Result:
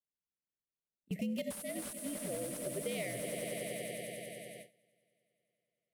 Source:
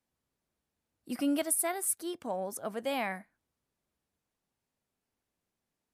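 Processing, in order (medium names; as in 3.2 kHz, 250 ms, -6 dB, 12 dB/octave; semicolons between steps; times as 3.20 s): local Wiener filter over 9 samples; Chebyshev band-stop 720–2000 Hz, order 4; feedback comb 130 Hz, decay 1.3 s, harmonics all, mix 60%; frequency shift -66 Hz; in parallel at +2 dB: peak limiter -33 dBFS, peak gain reduction 8 dB; on the sum: treble shelf 4.4 kHz +7.5 dB; on a send: echo with a slow build-up 94 ms, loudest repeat 5, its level -14 dB; on the sum: gate with hold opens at -31 dBFS; bass shelf 92 Hz -8 dB; compression 10:1, threshold -37 dBFS, peak gain reduction 14.5 dB; slew-rate limiter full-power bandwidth 35 Hz; trim +3.5 dB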